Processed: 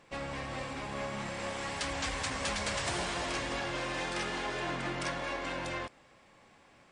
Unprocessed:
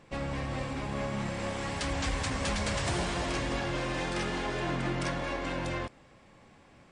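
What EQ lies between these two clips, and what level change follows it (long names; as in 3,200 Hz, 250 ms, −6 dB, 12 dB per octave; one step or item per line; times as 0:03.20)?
low-shelf EQ 350 Hz −9.5 dB
0.0 dB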